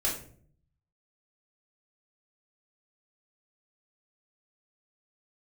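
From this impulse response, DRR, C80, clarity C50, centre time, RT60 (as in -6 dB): -6.5 dB, 10.5 dB, 6.5 dB, 32 ms, 0.55 s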